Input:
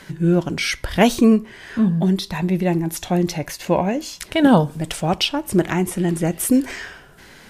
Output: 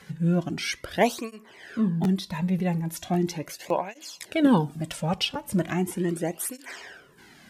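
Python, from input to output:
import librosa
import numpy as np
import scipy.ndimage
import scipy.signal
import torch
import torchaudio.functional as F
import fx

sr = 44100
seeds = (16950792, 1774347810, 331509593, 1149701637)

y = fx.buffer_crackle(x, sr, first_s=0.93, period_s=0.55, block=512, kind='repeat')
y = fx.flanger_cancel(y, sr, hz=0.38, depth_ms=3.3)
y = y * librosa.db_to_amplitude(-4.5)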